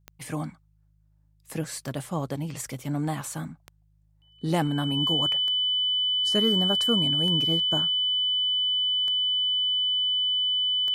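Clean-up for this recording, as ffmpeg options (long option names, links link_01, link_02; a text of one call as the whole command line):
ffmpeg -i in.wav -af "adeclick=threshold=4,bandreject=frequency=51.8:width_type=h:width=4,bandreject=frequency=103.6:width_type=h:width=4,bandreject=frequency=155.4:width_type=h:width=4,bandreject=frequency=3000:width=30" out.wav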